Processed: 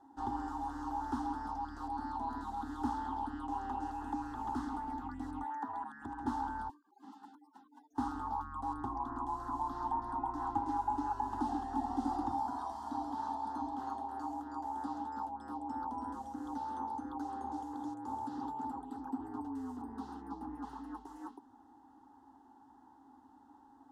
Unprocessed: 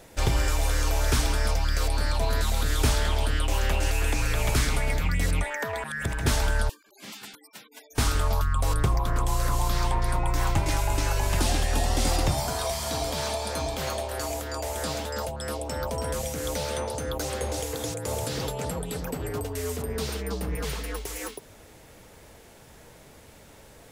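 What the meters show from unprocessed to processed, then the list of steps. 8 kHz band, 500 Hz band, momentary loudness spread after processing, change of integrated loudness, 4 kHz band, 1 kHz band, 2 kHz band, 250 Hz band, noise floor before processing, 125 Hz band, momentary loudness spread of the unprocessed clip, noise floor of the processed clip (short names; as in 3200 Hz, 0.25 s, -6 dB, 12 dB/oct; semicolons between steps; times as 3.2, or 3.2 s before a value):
under -30 dB, -21.0 dB, 9 LU, -11.5 dB, under -25 dB, -3.0 dB, -21.5 dB, -4.0 dB, -51 dBFS, -25.0 dB, 7 LU, -62 dBFS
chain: double band-pass 470 Hz, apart 1.6 oct; fixed phaser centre 620 Hz, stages 6; gain +4.5 dB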